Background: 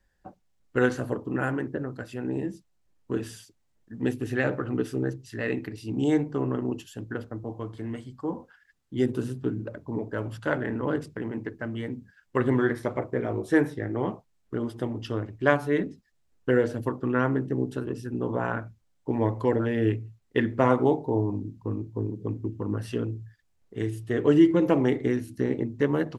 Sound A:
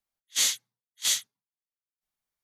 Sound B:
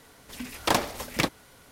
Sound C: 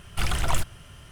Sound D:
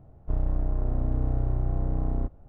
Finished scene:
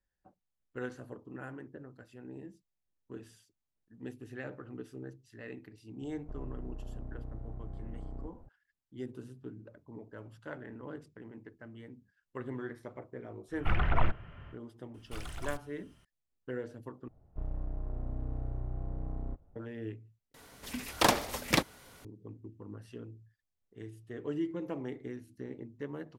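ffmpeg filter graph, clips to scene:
-filter_complex "[4:a]asplit=2[s0][s1];[3:a]asplit=2[s2][s3];[0:a]volume=0.15[s4];[s0]acompressor=threshold=0.0224:ratio=6:attack=3.2:release=140:knee=1:detection=peak[s5];[s2]lowpass=f=2300:w=0.5412,lowpass=f=2300:w=1.3066[s6];[s4]asplit=3[s7][s8][s9];[s7]atrim=end=17.084[s10];[s1]atrim=end=2.48,asetpts=PTS-STARTPTS,volume=0.282[s11];[s8]atrim=start=19.556:end=20.344[s12];[2:a]atrim=end=1.71,asetpts=PTS-STARTPTS,volume=0.841[s13];[s9]atrim=start=22.046[s14];[s5]atrim=end=2.48,asetpts=PTS-STARTPTS,volume=0.562,afade=t=in:d=0.004:c=hsin,afade=t=out:st=2.476:d=0.004:c=hsin,adelay=6010[s15];[s6]atrim=end=1.11,asetpts=PTS-STARTPTS,volume=0.794,afade=t=in:d=0.1,afade=t=out:st=1.01:d=0.1,adelay=594468S[s16];[s3]atrim=end=1.11,asetpts=PTS-STARTPTS,volume=0.141,afade=t=in:d=0.004:c=hsin,afade=t=out:st=1.106:d=0.004:c=hsin,adelay=14940[s17];[s10][s11]acrossfade=d=0.004:c1=hsin:c2=hsin[s18];[s18][s12]acrossfade=d=0.004:c1=hsin:c2=hsin[s19];[s19][s13]acrossfade=d=0.004:c1=hsin:c2=hsin[s20];[s20][s14]acrossfade=d=0.004:c1=hsin:c2=hsin[s21];[s21][s15][s16][s17]amix=inputs=4:normalize=0"

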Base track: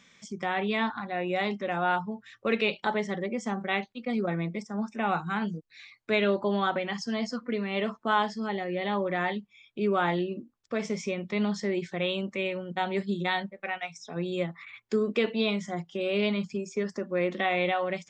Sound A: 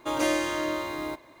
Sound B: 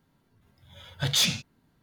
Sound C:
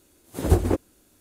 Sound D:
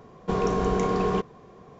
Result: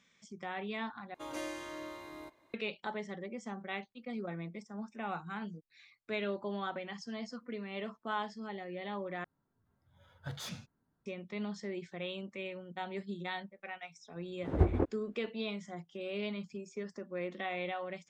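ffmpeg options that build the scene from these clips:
-filter_complex "[0:a]volume=0.282[s0];[1:a]aresample=32000,aresample=44100[s1];[2:a]highshelf=f=1900:t=q:w=1.5:g=-8[s2];[3:a]lowpass=1700[s3];[s0]asplit=3[s4][s5][s6];[s4]atrim=end=1.144[s7];[s1]atrim=end=1.4,asetpts=PTS-STARTPTS,volume=0.178[s8];[s5]atrim=start=2.536:end=9.244[s9];[s2]atrim=end=1.82,asetpts=PTS-STARTPTS,volume=0.224[s10];[s6]atrim=start=11.056[s11];[s3]atrim=end=1.2,asetpts=PTS-STARTPTS,volume=0.398,afade=t=in:d=0.004:c=hsin,afade=t=out:st=1.196:d=0.004:c=hsin,adelay=14090[s12];[s7][s8]acrossfade=d=0.004:c1=hsin:c2=hsin[s13];[s13][s9]acrossfade=d=0.004:c1=hsin:c2=hsin[s14];[s14][s10]acrossfade=d=0.004:c1=hsin:c2=hsin[s15];[s15][s11]acrossfade=d=0.004:c1=hsin:c2=hsin[s16];[s16][s12]amix=inputs=2:normalize=0"

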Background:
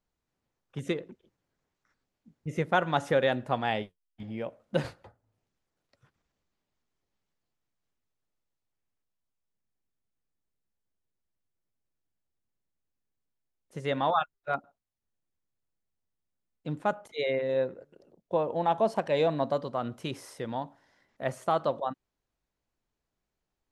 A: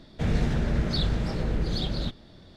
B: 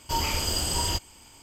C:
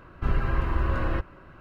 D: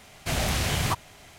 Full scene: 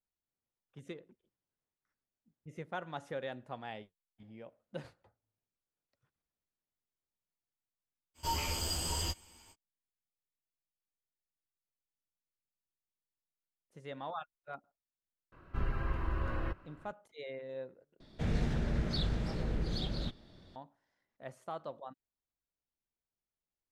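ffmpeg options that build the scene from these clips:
-filter_complex "[0:a]volume=0.178[s0];[2:a]asplit=2[s1][s2];[s2]adelay=12,volume=0.75[s3];[s1][s3]amix=inputs=2:normalize=0[s4];[s0]asplit=2[s5][s6];[s5]atrim=end=18.004[s7];[1:a]atrim=end=2.56,asetpts=PTS-STARTPTS,volume=0.422[s8];[s6]atrim=start=20.556[s9];[s4]atrim=end=1.42,asetpts=PTS-STARTPTS,volume=0.299,afade=t=in:d=0.05,afade=t=out:st=1.37:d=0.05,adelay=8140[s10];[3:a]atrim=end=1.6,asetpts=PTS-STARTPTS,volume=0.335,afade=t=in:d=0.004:c=hsin,afade=t=out:st=1.596:d=0.004:c=hsin,adelay=15320[s11];[s7][s8]acrossfade=d=0.004:c1=hsin:c2=hsin[s12];[s12][s9]acrossfade=d=0.004:c1=hsin:c2=hsin[s13];[s13][s10][s11]amix=inputs=3:normalize=0"

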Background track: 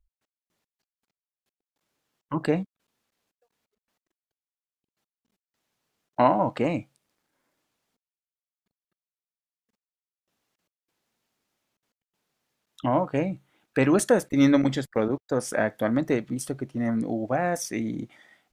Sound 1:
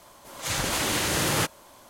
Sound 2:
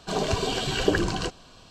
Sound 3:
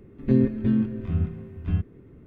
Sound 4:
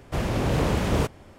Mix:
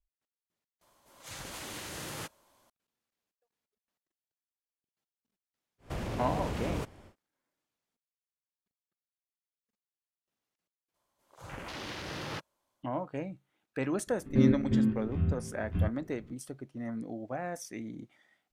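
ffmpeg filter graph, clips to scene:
-filter_complex "[1:a]asplit=2[s0][s1];[0:a]volume=0.266[s2];[4:a]acompressor=threshold=0.0251:ratio=2:attack=11:release=56:knee=1:detection=peak[s3];[s1]afwtdn=0.0282[s4];[s2]asplit=3[s5][s6][s7];[s5]atrim=end=0.814[s8];[s0]atrim=end=1.89,asetpts=PTS-STARTPTS,volume=0.158[s9];[s6]atrim=start=2.696:end=10.944[s10];[s4]atrim=end=1.89,asetpts=PTS-STARTPTS,volume=0.224[s11];[s7]atrim=start=12.826[s12];[s3]atrim=end=1.38,asetpts=PTS-STARTPTS,volume=0.501,afade=t=in:d=0.1,afade=t=out:st=1.28:d=0.1,adelay=5780[s13];[3:a]atrim=end=2.26,asetpts=PTS-STARTPTS,volume=0.596,afade=t=in:d=0.004:c=hsin,afade=t=out:st=2.256:d=0.004:c=hsin,adelay=14070[s14];[s8][s9]acrossfade=d=0.004:c1=hsin:c2=hsin[s15];[s15][s10]acrossfade=d=0.004:c1=hsin:c2=hsin[s16];[s16][s11]acrossfade=d=0.004:c1=hsin:c2=hsin[s17];[s17][s12]acrossfade=d=0.004:c1=hsin:c2=hsin[s18];[s18][s13][s14]amix=inputs=3:normalize=0"

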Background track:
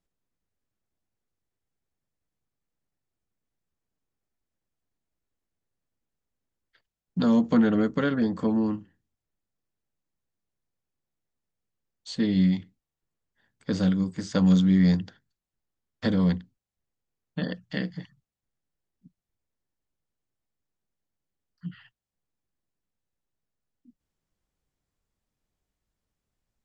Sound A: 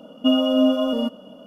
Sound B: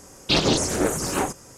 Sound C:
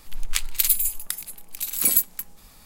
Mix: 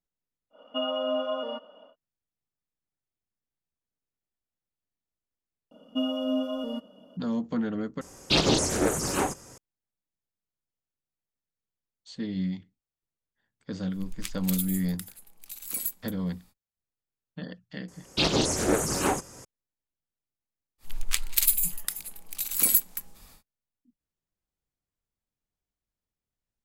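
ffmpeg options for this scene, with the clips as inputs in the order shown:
-filter_complex "[1:a]asplit=2[s0][s1];[2:a]asplit=2[s2][s3];[3:a]asplit=2[s4][s5];[0:a]volume=0.376[s6];[s0]highpass=720,lowpass=2200[s7];[s3]dynaudnorm=f=130:g=3:m=3.35[s8];[s6]asplit=2[s9][s10];[s9]atrim=end=8.014[s11];[s2]atrim=end=1.57,asetpts=PTS-STARTPTS,volume=0.75[s12];[s10]atrim=start=9.576[s13];[s7]atrim=end=1.46,asetpts=PTS-STARTPTS,volume=0.841,afade=t=in:d=0.1,afade=t=out:st=1.36:d=0.1,adelay=500[s14];[s1]atrim=end=1.46,asetpts=PTS-STARTPTS,volume=0.299,afade=t=in:d=0.004:c=hsin,afade=t=out:st=1.456:d=0.004:c=hsin,adelay=5710[s15];[s4]atrim=end=2.65,asetpts=PTS-STARTPTS,volume=0.237,afade=t=in:d=0.05,afade=t=out:st=2.6:d=0.05,adelay=13890[s16];[s8]atrim=end=1.57,asetpts=PTS-STARTPTS,volume=0.335,afade=t=in:d=0.004:c=hsin,afade=t=out:st=1.566:d=0.004:c=hsin,adelay=17880[s17];[s5]atrim=end=2.65,asetpts=PTS-STARTPTS,volume=0.75,afade=t=in:d=0.1,afade=t=out:st=2.55:d=0.1,adelay=20780[s18];[s11][s12]acrossfade=d=0.004:c1=hsin:c2=hsin[s19];[s19][s13]acrossfade=d=0.004:c1=hsin:c2=hsin[s20];[s20][s14][s15][s16][s17][s18]amix=inputs=6:normalize=0"

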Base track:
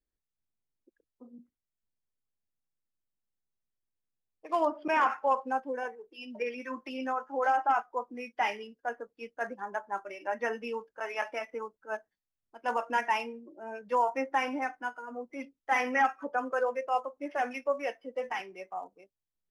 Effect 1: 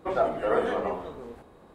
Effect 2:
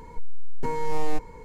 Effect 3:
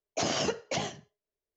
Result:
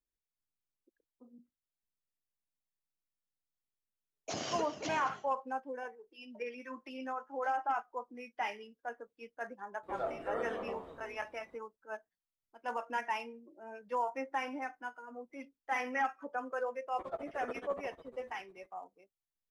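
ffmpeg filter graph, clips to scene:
-filter_complex "[1:a]asplit=2[s0][s1];[0:a]volume=0.447[s2];[3:a]asplit=2[s3][s4];[s4]adelay=215.7,volume=0.316,highshelf=f=4000:g=-4.85[s5];[s3][s5]amix=inputs=2:normalize=0[s6];[s1]tremolo=f=14:d=0.95[s7];[s6]atrim=end=1.56,asetpts=PTS-STARTPTS,volume=0.335,afade=t=in:d=0.004:c=hsin,afade=t=out:st=1.556:d=0.004:c=hsin,adelay=4110[s8];[s0]atrim=end=1.74,asetpts=PTS-STARTPTS,volume=0.237,afade=t=in:d=0.004:c=hsin,afade=t=out:st=1.736:d=0.004:c=hsin,adelay=9830[s9];[s7]atrim=end=1.74,asetpts=PTS-STARTPTS,volume=0.2,afade=t=in:d=0.004:c=hsin,afade=t=out:st=1.736:d=0.004:c=hsin,adelay=16930[s10];[s2][s8][s9][s10]amix=inputs=4:normalize=0"

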